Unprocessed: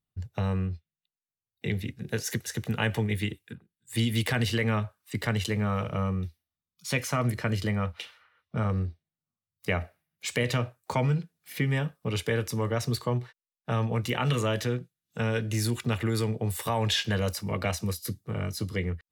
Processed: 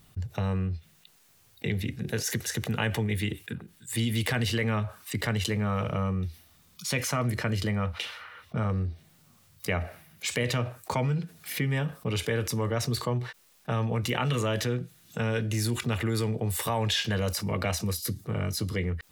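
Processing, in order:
envelope flattener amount 50%
level −2.5 dB

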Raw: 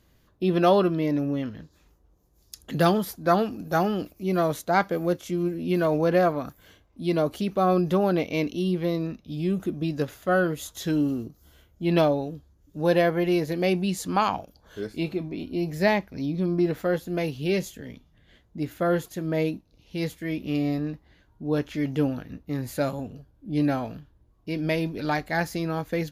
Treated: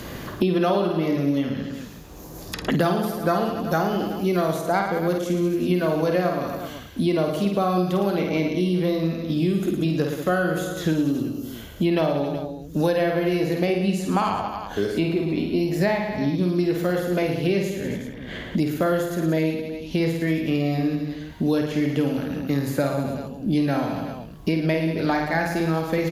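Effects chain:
reverse bouncing-ball delay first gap 50 ms, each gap 1.2×, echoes 5
multiband upward and downward compressor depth 100%

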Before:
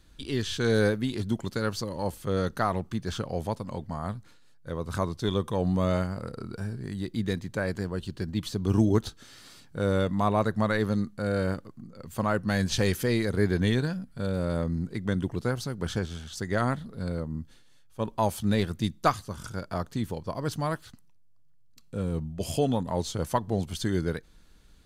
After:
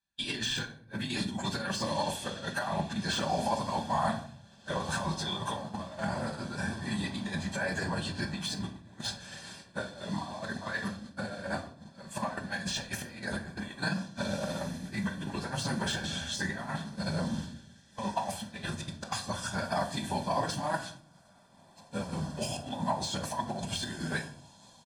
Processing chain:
random phases in long frames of 50 ms
low-pass filter 10,000 Hz 24 dB per octave
compressor whose output falls as the input rises −31 dBFS, ratio −0.5
high-pass filter 580 Hz 6 dB per octave
comb filter 1.2 ms, depth 73%
feedback delay with all-pass diffusion 1,662 ms, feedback 55%, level −14 dB
de-essing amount 85%
downward expander −39 dBFS
rectangular room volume 640 cubic metres, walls furnished, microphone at 1.2 metres
level +3 dB

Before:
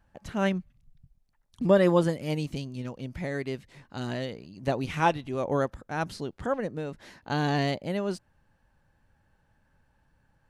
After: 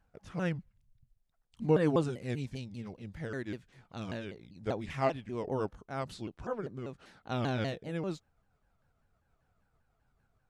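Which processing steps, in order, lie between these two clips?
pitch shifter swept by a sawtooth −5 semitones, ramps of 196 ms
level −5.5 dB

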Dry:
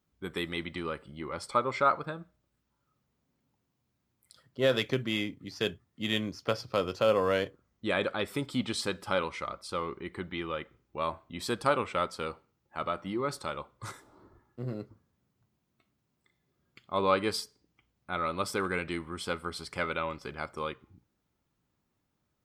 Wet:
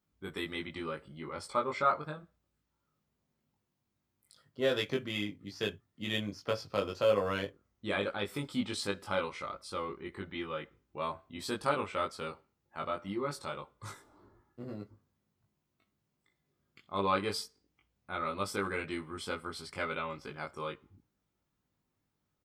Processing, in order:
double-tracking delay 20 ms −2 dB
level −5.5 dB

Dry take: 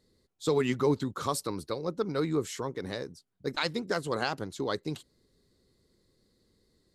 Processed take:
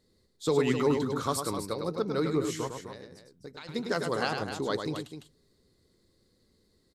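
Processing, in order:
0:02.67–0:03.69: downward compressor 5 to 1, threshold −44 dBFS, peak gain reduction 17 dB
loudspeakers that aren't time-aligned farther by 35 metres −6 dB, 88 metres −9 dB
on a send at −22 dB: convolution reverb RT60 0.25 s, pre-delay 9 ms

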